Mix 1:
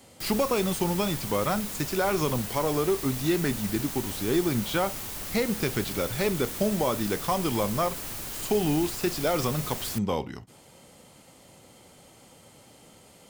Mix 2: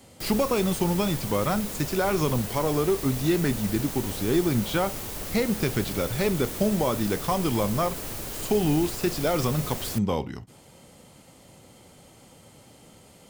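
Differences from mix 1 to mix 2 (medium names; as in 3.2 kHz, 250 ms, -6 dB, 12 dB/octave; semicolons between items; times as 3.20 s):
background: add peaking EQ 480 Hz +6 dB 1.2 oct; master: add bass shelf 250 Hz +5 dB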